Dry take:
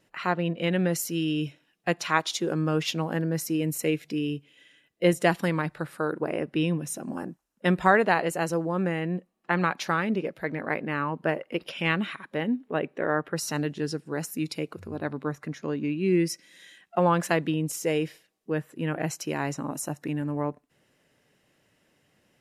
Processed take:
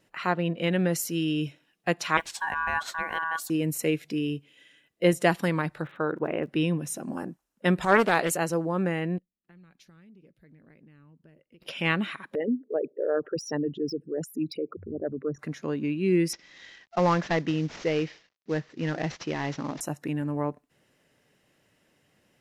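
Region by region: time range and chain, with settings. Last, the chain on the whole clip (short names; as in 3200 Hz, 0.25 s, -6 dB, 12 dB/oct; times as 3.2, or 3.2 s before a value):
2.17–3.5 bell 3600 Hz -15 dB 0.45 oct + ring modulator 1300 Hz + requantised 12-bit, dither none
5.81–6.46 steep low-pass 3800 Hz 96 dB/oct + crackle 66/s -50 dBFS
7.81–8.37 high shelf 2900 Hz +10.5 dB + transient shaper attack -11 dB, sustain 0 dB + Doppler distortion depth 0.27 ms
9.18–11.62 passive tone stack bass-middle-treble 10-0-1 + compressor, threshold -50 dBFS
12.35–15.39 formant sharpening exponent 3 + de-esser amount 85%
16.33–19.81 CVSD 32 kbps + bell 2000 Hz +3.5 dB 0.37 oct
whole clip: dry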